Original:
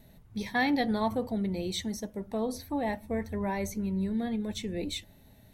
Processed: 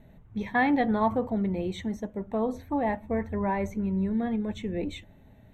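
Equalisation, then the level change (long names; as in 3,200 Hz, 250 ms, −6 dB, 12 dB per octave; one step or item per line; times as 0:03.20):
dynamic equaliser 1,100 Hz, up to +4 dB, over −46 dBFS, Q 1.4
moving average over 9 samples
+3.0 dB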